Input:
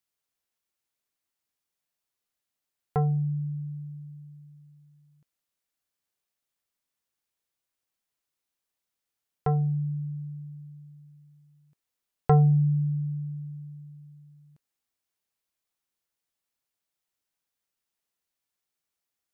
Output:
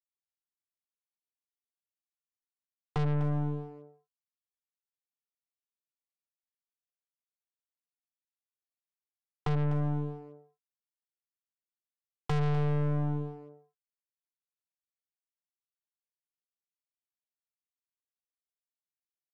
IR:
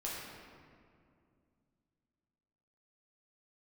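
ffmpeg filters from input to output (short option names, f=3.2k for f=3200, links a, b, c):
-filter_complex "[0:a]highpass=88,aresample=8000,acrusher=bits=4:mix=0:aa=0.5,aresample=44100,tiltshelf=f=910:g=5,aeval=exprs='(tanh(35.5*val(0)+0.7)-tanh(0.7))/35.5':c=same,asplit=2[a][b];[b]adelay=250,highpass=300,lowpass=3.4k,asoftclip=type=hard:threshold=-36dB,volume=-9dB[c];[a][c]amix=inputs=2:normalize=0,volume=3.5dB"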